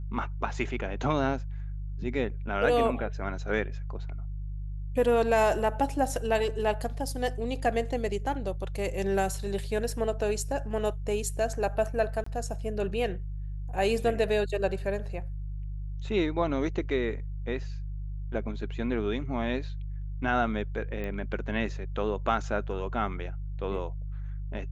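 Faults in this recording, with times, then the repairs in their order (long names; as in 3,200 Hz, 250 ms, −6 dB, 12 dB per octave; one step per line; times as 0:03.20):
mains hum 50 Hz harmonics 3 −35 dBFS
0:12.24–0:12.26: drop-out 24 ms
0:21.04: click −24 dBFS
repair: click removal
hum removal 50 Hz, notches 3
repair the gap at 0:12.24, 24 ms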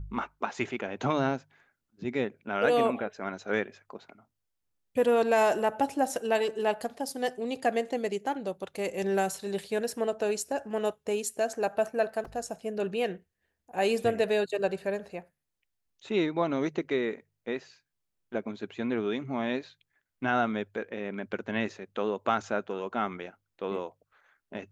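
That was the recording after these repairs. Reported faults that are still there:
none of them is left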